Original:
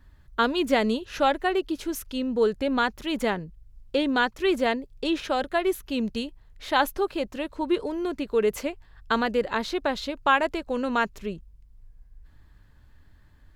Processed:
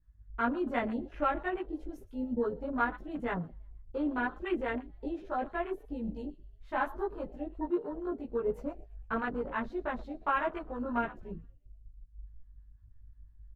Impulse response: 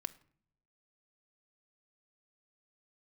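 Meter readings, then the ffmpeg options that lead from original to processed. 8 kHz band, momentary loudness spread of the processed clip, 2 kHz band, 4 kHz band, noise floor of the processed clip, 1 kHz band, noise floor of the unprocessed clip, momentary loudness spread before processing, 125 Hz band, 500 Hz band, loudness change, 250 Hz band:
under -30 dB, 12 LU, -9.0 dB, -22.5 dB, -57 dBFS, -8.0 dB, -55 dBFS, 10 LU, -3.0 dB, -9.5 dB, -8.5 dB, -7.5 dB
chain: -filter_complex "[0:a]equalizer=f=1.3k:w=0.89:g=4.5,aeval=exprs='val(0)+0.00251*(sin(2*PI*50*n/s)+sin(2*PI*2*50*n/s)/2+sin(2*PI*3*50*n/s)/3+sin(2*PI*4*50*n/s)/4+sin(2*PI*5*50*n/s)/5)':c=same,asplit=5[a][b][c][d][e];[b]adelay=116,afreqshift=59,volume=-18dB[f];[c]adelay=232,afreqshift=118,volume=-23.7dB[g];[d]adelay=348,afreqshift=177,volume=-29.4dB[h];[e]adelay=464,afreqshift=236,volume=-35dB[i];[a][f][g][h][i]amix=inputs=5:normalize=0,asplit=2[j][k];[1:a]atrim=start_sample=2205,atrim=end_sample=4410,adelay=17[l];[k][l]afir=irnorm=-1:irlink=0,volume=5dB[m];[j][m]amix=inputs=2:normalize=0,afwtdn=0.0562,flanger=delay=5.9:depth=2.6:regen=-43:speed=0.66:shape=triangular,acrossover=split=680[n][o];[n]aeval=exprs='val(0)*(1-0.5/2+0.5/2*cos(2*PI*5.9*n/s))':c=same[p];[o]aeval=exprs='val(0)*(1-0.5/2-0.5/2*cos(2*PI*5.9*n/s))':c=same[q];[p][q]amix=inputs=2:normalize=0,firequalizer=gain_entry='entry(150,0);entry(310,-8);entry(3500,-13)':delay=0.05:min_phase=1"

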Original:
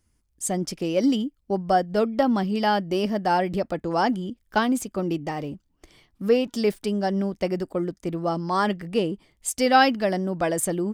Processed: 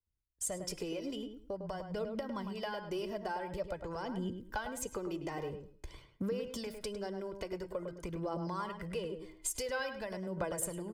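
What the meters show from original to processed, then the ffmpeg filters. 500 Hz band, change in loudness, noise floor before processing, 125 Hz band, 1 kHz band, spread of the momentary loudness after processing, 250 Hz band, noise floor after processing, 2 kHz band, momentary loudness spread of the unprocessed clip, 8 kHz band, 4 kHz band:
-14.0 dB, -15.0 dB, -69 dBFS, -13.0 dB, -18.5 dB, 5 LU, -16.5 dB, -63 dBFS, -14.5 dB, 8 LU, -8.0 dB, -14.0 dB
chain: -filter_complex "[0:a]agate=range=-33dB:threshold=-50dB:ratio=3:detection=peak,acrossover=split=130[a][b];[b]acompressor=threshold=-30dB:ratio=2.5[c];[a][c]amix=inputs=2:normalize=0,highshelf=f=3.2k:g=-8,aecho=1:1:2:0.54,bandreject=f=315:t=h:w=4,bandreject=f=630:t=h:w=4,bandreject=f=945:t=h:w=4,bandreject=f=1.26k:t=h:w=4,bandreject=f=1.575k:t=h:w=4,bandreject=f=1.89k:t=h:w=4,bandreject=f=2.205k:t=h:w=4,bandreject=f=2.52k:t=h:w=4,bandreject=f=2.835k:t=h:w=4,bandreject=f=3.15k:t=h:w=4,bandreject=f=3.465k:t=h:w=4,bandreject=f=3.78k:t=h:w=4,bandreject=f=4.095k:t=h:w=4,bandreject=f=4.41k:t=h:w=4,bandreject=f=4.725k:t=h:w=4,bandreject=f=5.04k:t=h:w=4,bandreject=f=5.355k:t=h:w=4,bandreject=f=5.67k:t=h:w=4,bandreject=f=5.985k:t=h:w=4,bandreject=f=6.3k:t=h:w=4,bandreject=f=6.615k:t=h:w=4,bandreject=f=6.93k:t=h:w=4,bandreject=f=7.245k:t=h:w=4,bandreject=f=7.56k:t=h:w=4,bandreject=f=7.875k:t=h:w=4,bandreject=f=8.19k:t=h:w=4,bandreject=f=8.505k:t=h:w=4,bandreject=f=8.82k:t=h:w=4,bandreject=f=9.135k:t=h:w=4,bandreject=f=9.45k:t=h:w=4,bandreject=f=9.765k:t=h:w=4,bandreject=f=10.08k:t=h:w=4,bandreject=f=10.395k:t=h:w=4,bandreject=f=10.71k:t=h:w=4,bandreject=f=11.025k:t=h:w=4,bandreject=f=11.34k:t=h:w=4,bandreject=f=11.655k:t=h:w=4,bandreject=f=11.97k:t=h:w=4,acrossover=split=670[d][e];[d]alimiter=level_in=7dB:limit=-24dB:level=0:latency=1:release=166,volume=-7dB[f];[f][e]amix=inputs=2:normalize=0,acompressor=threshold=-44dB:ratio=2.5,aphaser=in_gain=1:out_gain=1:delay=3.1:decay=0.43:speed=0.48:type=triangular,asplit=2[g][h];[h]adelay=104,lowpass=f=2k:p=1,volume=-6.5dB,asplit=2[i][j];[j]adelay=104,lowpass=f=2k:p=1,volume=0.22,asplit=2[k][l];[l]adelay=104,lowpass=f=2k:p=1,volume=0.22[m];[g][i][k][m]amix=inputs=4:normalize=0,adynamicequalizer=threshold=0.001:dfrequency=5600:dqfactor=0.7:tfrequency=5600:tqfactor=0.7:attack=5:release=100:ratio=0.375:range=3.5:mode=boostabove:tftype=highshelf,volume=2.5dB"

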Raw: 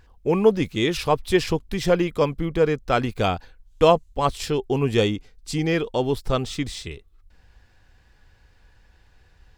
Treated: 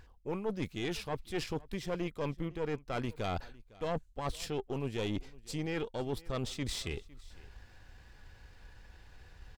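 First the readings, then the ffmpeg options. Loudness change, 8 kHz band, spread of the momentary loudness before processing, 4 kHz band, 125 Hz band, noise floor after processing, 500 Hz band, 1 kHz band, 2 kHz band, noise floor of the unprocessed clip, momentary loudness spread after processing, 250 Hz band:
-15.0 dB, -9.5 dB, 10 LU, -12.5 dB, -12.5 dB, -59 dBFS, -16.5 dB, -16.0 dB, -13.5 dB, -57 dBFS, 21 LU, -13.5 dB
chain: -af "areverse,acompressor=threshold=-36dB:ratio=5,areverse,aeval=exprs='(tanh(35.5*val(0)+0.6)-tanh(0.6))/35.5':c=same,aecho=1:1:506:0.0794,volume=4dB"

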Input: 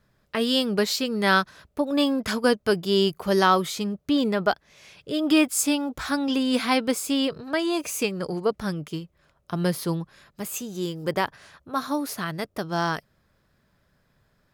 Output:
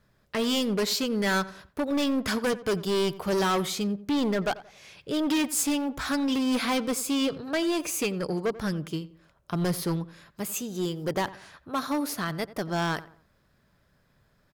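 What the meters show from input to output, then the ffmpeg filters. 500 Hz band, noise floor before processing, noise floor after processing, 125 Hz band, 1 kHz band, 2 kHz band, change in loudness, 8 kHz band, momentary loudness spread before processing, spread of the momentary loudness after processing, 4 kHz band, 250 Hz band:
-3.5 dB, -68 dBFS, -67 dBFS, -1.0 dB, -5.0 dB, -4.5 dB, -3.0 dB, -1.0 dB, 11 LU, 9 LU, -3.5 dB, -2.5 dB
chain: -filter_complex "[0:a]asoftclip=type=hard:threshold=-22.5dB,asplit=2[a][b];[b]adelay=89,lowpass=f=2k:p=1,volume=-16.5dB,asplit=2[c][d];[d]adelay=89,lowpass=f=2k:p=1,volume=0.37,asplit=2[e][f];[f]adelay=89,lowpass=f=2k:p=1,volume=0.37[g];[c][e][g]amix=inputs=3:normalize=0[h];[a][h]amix=inputs=2:normalize=0"

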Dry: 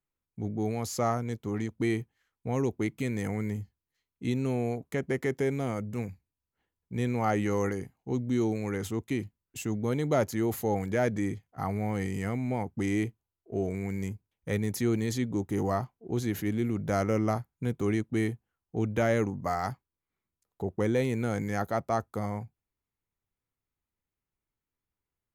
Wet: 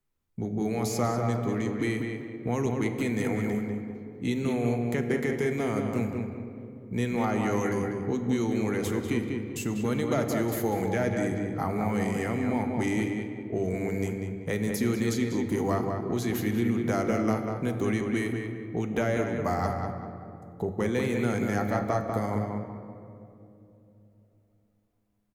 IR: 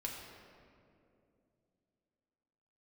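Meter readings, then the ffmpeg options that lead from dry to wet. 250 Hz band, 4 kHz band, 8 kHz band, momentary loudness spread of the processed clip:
+3.0 dB, +3.5 dB, +2.5 dB, 8 LU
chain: -filter_complex "[0:a]lowshelf=f=320:g=6.5,bandreject=f=50:t=h:w=6,bandreject=f=100:t=h:w=6,bandreject=f=150:t=h:w=6,bandreject=f=200:t=h:w=6,acrossover=split=270|920[a][b][c];[a]acompressor=threshold=-38dB:ratio=4[d];[b]acompressor=threshold=-35dB:ratio=4[e];[c]acompressor=threshold=-37dB:ratio=4[f];[d][e][f]amix=inputs=3:normalize=0,asplit=2[g][h];[h]adelay=194,lowpass=f=2.7k:p=1,volume=-4dB,asplit=2[i][j];[j]adelay=194,lowpass=f=2.7k:p=1,volume=0.35,asplit=2[k][l];[l]adelay=194,lowpass=f=2.7k:p=1,volume=0.35,asplit=2[m][n];[n]adelay=194,lowpass=f=2.7k:p=1,volume=0.35[o];[g][i][k][m][o]amix=inputs=5:normalize=0,asplit=2[p][q];[1:a]atrim=start_sample=2205,asetrate=38367,aresample=44100[r];[q][r]afir=irnorm=-1:irlink=0,volume=-2dB[s];[p][s]amix=inputs=2:normalize=0"

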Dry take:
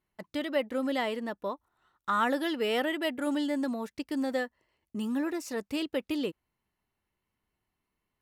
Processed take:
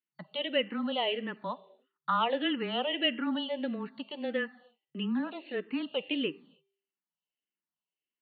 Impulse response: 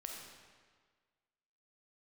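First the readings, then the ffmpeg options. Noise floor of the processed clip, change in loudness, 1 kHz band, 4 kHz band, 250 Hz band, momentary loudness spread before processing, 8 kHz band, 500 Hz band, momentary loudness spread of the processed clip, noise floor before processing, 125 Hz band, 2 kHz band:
under -85 dBFS, -1.0 dB, -0.5 dB, +6.0 dB, -2.5 dB, 9 LU, under -30 dB, -2.0 dB, 11 LU, -85 dBFS, n/a, -1.0 dB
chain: -filter_complex "[0:a]agate=range=-16dB:threshold=-56dB:ratio=16:detection=peak,asplit=2[a][b];[1:a]atrim=start_sample=2205,afade=t=out:st=0.36:d=0.01,atrim=end_sample=16317[c];[b][c]afir=irnorm=-1:irlink=0,volume=-14dB[d];[a][d]amix=inputs=2:normalize=0,afreqshift=-15,acrossover=split=530|3000[e][f][g];[g]acompressor=threshold=-56dB:ratio=6[h];[e][f][h]amix=inputs=3:normalize=0,afftfilt=real='re*between(b*sr/4096,140,4500)':imag='im*between(b*sr/4096,140,4500)':win_size=4096:overlap=0.75,equalizer=f=2.9k:t=o:w=0.41:g=15,bandreject=f=394.1:t=h:w=4,bandreject=f=788.2:t=h:w=4,bandreject=f=1.1823k:t=h:w=4,bandreject=f=1.5764k:t=h:w=4,bandreject=f=1.9705k:t=h:w=4,bandreject=f=2.3646k:t=h:w=4,bandreject=f=2.7587k:t=h:w=4,bandreject=f=3.1528k:t=h:w=4,bandreject=f=3.5469k:t=h:w=4,bandreject=f=3.941k:t=h:w=4,bandreject=f=4.3351k:t=h:w=4,bandreject=f=4.7292k:t=h:w=4,bandreject=f=5.1233k:t=h:w=4,bandreject=f=5.5174k:t=h:w=4,asplit=2[i][j];[j]afreqshift=-1.6[k];[i][k]amix=inputs=2:normalize=1"

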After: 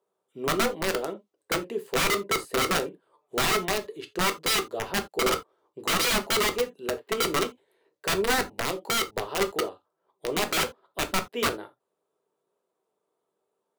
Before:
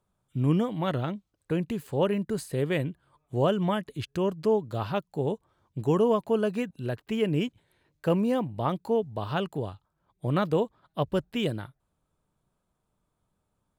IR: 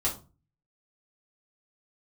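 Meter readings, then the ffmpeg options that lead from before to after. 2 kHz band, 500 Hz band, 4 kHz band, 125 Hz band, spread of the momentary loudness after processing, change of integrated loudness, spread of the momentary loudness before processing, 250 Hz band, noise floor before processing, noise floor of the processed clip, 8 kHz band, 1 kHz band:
+12.0 dB, -1.5 dB, +13.0 dB, -10.5 dB, 9 LU, +2.0 dB, 10 LU, -6.0 dB, -79 dBFS, -81 dBFS, n/a, +4.5 dB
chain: -filter_complex "[0:a]highpass=f=430:t=q:w=4.9,aeval=exprs='(mod(6.31*val(0)+1,2)-1)/6.31':c=same,asplit=2[a][b];[1:a]atrim=start_sample=2205,atrim=end_sample=3969,highshelf=f=9.2k:g=-5.5[c];[b][c]afir=irnorm=-1:irlink=0,volume=-9.5dB[d];[a][d]amix=inputs=2:normalize=0,volume=-6dB"

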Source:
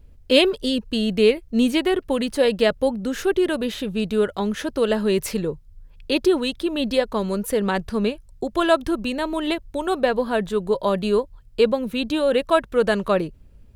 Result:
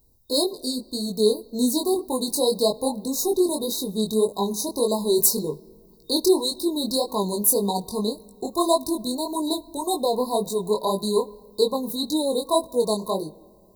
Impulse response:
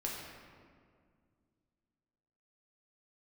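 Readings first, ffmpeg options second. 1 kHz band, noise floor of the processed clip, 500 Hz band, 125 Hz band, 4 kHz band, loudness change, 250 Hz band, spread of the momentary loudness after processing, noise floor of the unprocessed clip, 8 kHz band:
-1.0 dB, -53 dBFS, -3.0 dB, -4.0 dB, -0.5 dB, -2.0 dB, -3.0 dB, 8 LU, -49 dBFS, +12.0 dB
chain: -filter_complex "[0:a]equalizer=f=560:t=o:w=0.35:g=-7.5,dynaudnorm=f=160:g=11:m=5dB,asplit=2[a][b];[1:a]atrim=start_sample=2205[c];[b][c]afir=irnorm=-1:irlink=0,volume=-20.5dB[d];[a][d]amix=inputs=2:normalize=0,afftfilt=real='re*(1-between(b*sr/4096,1100,3700))':imag='im*(1-between(b*sr/4096,1100,3700))':win_size=4096:overlap=0.75,flanger=delay=19.5:depth=4.5:speed=1.8,aemphasis=mode=production:type=bsi"

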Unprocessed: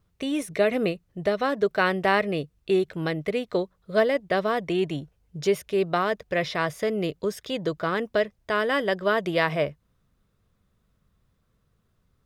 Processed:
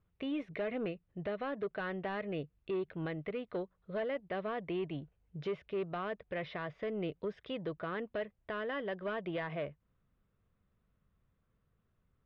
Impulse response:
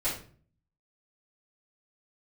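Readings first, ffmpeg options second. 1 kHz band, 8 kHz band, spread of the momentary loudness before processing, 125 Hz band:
-15.0 dB, under -35 dB, 7 LU, -10.5 dB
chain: -af "asoftclip=type=tanh:threshold=-18dB,lowpass=f=3.1k:w=0.5412,lowpass=f=3.1k:w=1.3066,alimiter=limit=-22.5dB:level=0:latency=1:release=294,volume=-7.5dB"

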